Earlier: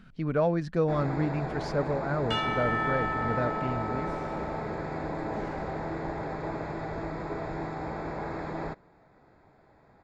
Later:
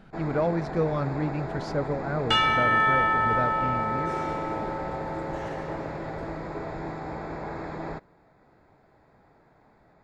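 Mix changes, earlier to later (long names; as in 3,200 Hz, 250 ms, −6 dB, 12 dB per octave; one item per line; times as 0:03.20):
first sound: entry −0.75 s
second sound +8.5 dB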